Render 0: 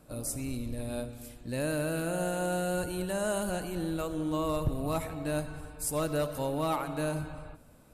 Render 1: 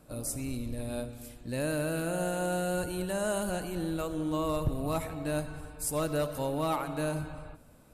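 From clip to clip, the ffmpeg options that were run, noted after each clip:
-af anull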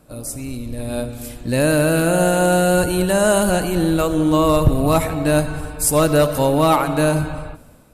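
-af "dynaudnorm=f=670:g=3:m=3.16,volume=1.88"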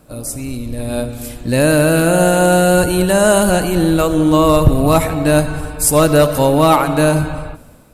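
-af "acrusher=bits=11:mix=0:aa=0.000001,volume=1.58"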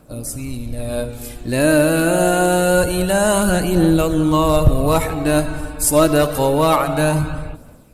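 -af "aphaser=in_gain=1:out_gain=1:delay=3.6:decay=0.35:speed=0.26:type=triangular,volume=0.668"

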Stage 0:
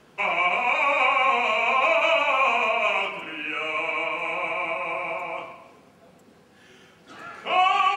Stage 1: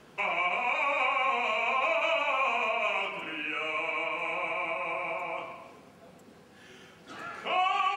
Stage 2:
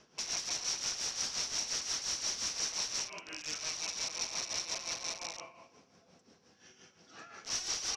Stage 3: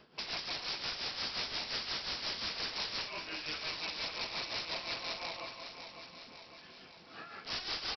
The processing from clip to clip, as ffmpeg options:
-af "acompressor=threshold=0.0141:ratio=1.5"
-af "aeval=exprs='(mod(25.1*val(0)+1,2)-1)/25.1':c=same,lowpass=f=5700:t=q:w=8.1,tremolo=f=5.7:d=0.65,volume=0.398"
-af "aecho=1:1:553|1106|1659|2212|2765|3318|3871:0.335|0.201|0.121|0.0724|0.0434|0.026|0.0156,aresample=11025,aresample=44100,volume=1.41"

